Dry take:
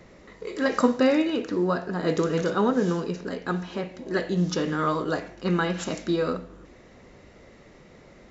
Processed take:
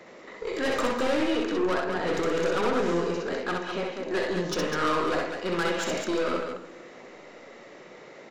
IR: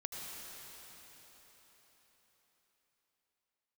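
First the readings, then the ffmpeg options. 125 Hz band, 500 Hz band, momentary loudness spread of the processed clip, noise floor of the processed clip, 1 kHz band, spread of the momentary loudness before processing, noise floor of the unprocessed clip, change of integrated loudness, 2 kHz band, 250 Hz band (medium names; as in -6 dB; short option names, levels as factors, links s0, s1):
-8.5 dB, -0.5 dB, 21 LU, -48 dBFS, +0.5 dB, 10 LU, -52 dBFS, -2.0 dB, +2.0 dB, -4.5 dB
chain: -filter_complex "[0:a]highpass=140,bass=f=250:g=-13,treble=f=4000:g=-4,aeval=exprs='(tanh(31.6*val(0)+0.25)-tanh(0.25))/31.6':c=same,aecho=1:1:64.14|201.2:0.708|0.501,asplit=2[s0][s1];[1:a]atrim=start_sample=2205[s2];[s1][s2]afir=irnorm=-1:irlink=0,volume=0.106[s3];[s0][s3]amix=inputs=2:normalize=0,volume=1.68"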